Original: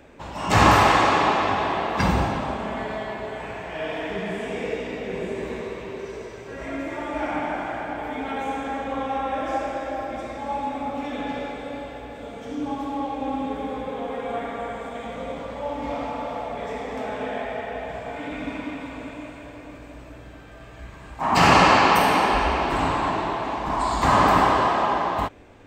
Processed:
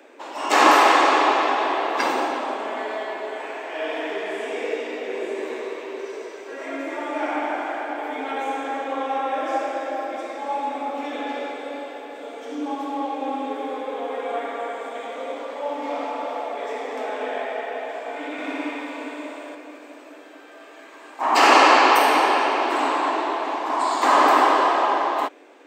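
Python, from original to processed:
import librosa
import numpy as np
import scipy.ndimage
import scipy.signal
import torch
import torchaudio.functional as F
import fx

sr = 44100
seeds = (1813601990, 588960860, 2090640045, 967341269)

y = scipy.signal.sosfilt(scipy.signal.butter(8, 280.0, 'highpass', fs=sr, output='sos'), x)
y = fx.room_flutter(y, sr, wall_m=10.5, rt60_s=1.1, at=(18.32, 19.55))
y = y * 10.0 ** (2.0 / 20.0)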